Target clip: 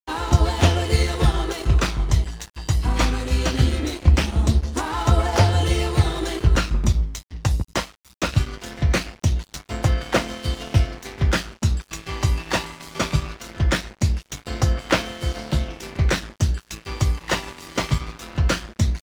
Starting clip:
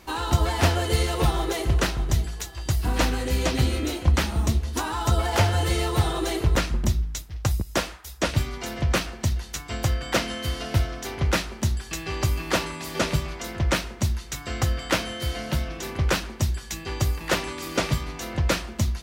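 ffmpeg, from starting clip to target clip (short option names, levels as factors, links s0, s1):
-af "lowpass=8500,aphaser=in_gain=1:out_gain=1:delay=1.1:decay=0.31:speed=0.2:type=triangular,aeval=exprs='sgn(val(0))*max(abs(val(0))-0.0178,0)':c=same,volume=1.33"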